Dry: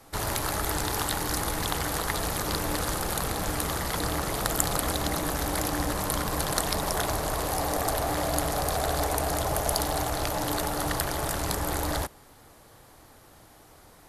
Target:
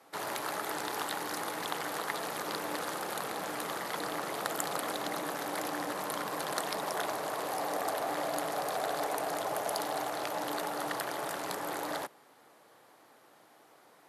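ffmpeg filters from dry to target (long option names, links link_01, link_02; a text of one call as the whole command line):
ffmpeg -i in.wav -af "highpass=frequency=140:width=0.5412,highpass=frequency=140:width=1.3066,bass=frequency=250:gain=-11,treble=frequency=4000:gain=-7,volume=-4dB" out.wav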